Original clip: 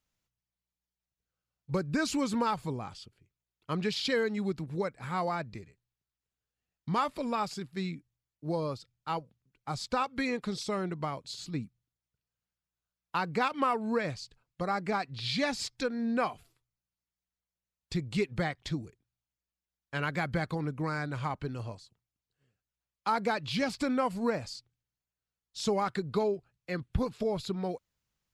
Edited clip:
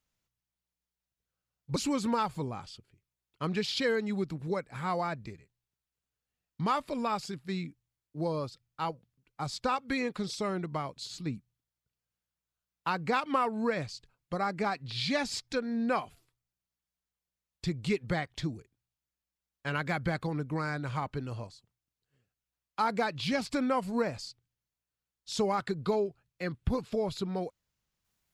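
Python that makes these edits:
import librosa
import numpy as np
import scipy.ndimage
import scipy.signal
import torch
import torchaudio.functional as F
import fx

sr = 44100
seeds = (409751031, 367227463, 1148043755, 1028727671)

y = fx.edit(x, sr, fx.cut(start_s=1.76, length_s=0.28), tone=tone)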